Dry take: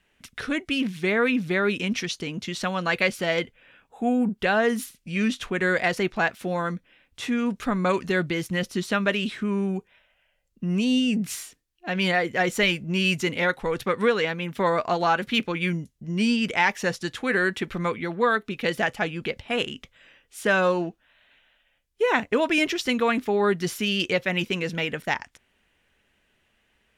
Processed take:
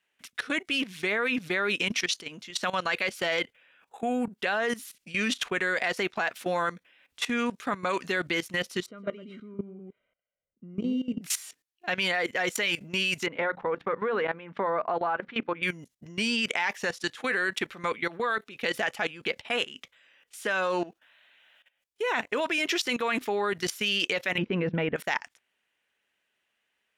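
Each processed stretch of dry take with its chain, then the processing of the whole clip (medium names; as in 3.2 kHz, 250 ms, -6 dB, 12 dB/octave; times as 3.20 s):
8.86–11.21 s: boxcar filter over 51 samples + delay 115 ms -8.5 dB
13.26–15.63 s: low-pass 1.3 kHz + hum notches 60/120/180/240/300 Hz + tape noise reduction on one side only encoder only
24.38–24.96 s: low-pass 2.6 kHz + tilt EQ -4.5 dB/octave
whole clip: high-pass 720 Hz 6 dB/octave; level held to a coarse grid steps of 17 dB; trim +7 dB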